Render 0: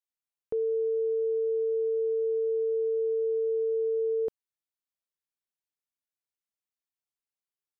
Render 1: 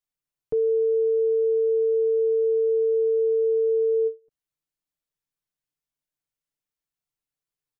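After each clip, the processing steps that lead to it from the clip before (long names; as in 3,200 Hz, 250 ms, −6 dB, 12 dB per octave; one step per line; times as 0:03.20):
low-shelf EQ 190 Hz +12 dB
comb filter 6.7 ms
every ending faded ahead of time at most 290 dB per second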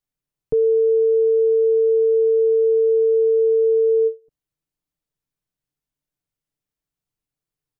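low-shelf EQ 450 Hz +10.5 dB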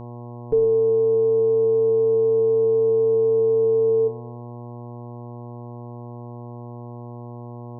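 reverb reduction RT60 0.62 s
four-comb reverb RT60 0.7 s, combs from 32 ms, DRR 11 dB
hum with harmonics 120 Hz, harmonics 9, −36 dBFS −5 dB per octave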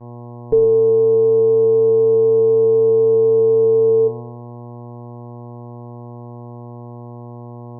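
downward expander −32 dBFS
level +5 dB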